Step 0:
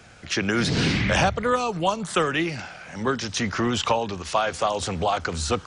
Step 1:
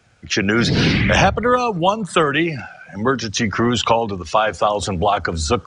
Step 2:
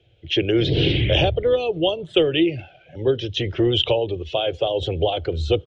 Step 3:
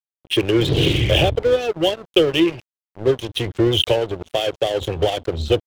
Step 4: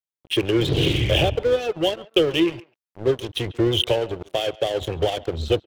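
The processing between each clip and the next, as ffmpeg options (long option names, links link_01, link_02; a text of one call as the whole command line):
ffmpeg -i in.wav -af "afftdn=noise_reduction=15:noise_floor=-34,volume=6.5dB" out.wav
ffmpeg -i in.wav -af "firequalizer=gain_entry='entry(130,0);entry(210,-19);entry(330,3);entry(560,-1);entry(1100,-25);entry(3200,5);entry(4600,-17);entry(8600,-28)':delay=0.05:min_phase=1" out.wav
ffmpeg -i in.wav -af "aeval=exprs='sgn(val(0))*max(abs(val(0))-0.0282,0)':channel_layout=same,volume=3.5dB" out.wav
ffmpeg -i in.wav -filter_complex "[0:a]asplit=2[link_01][link_02];[link_02]adelay=140,highpass=300,lowpass=3400,asoftclip=type=hard:threshold=-10dB,volume=-20dB[link_03];[link_01][link_03]amix=inputs=2:normalize=0,volume=-3dB" out.wav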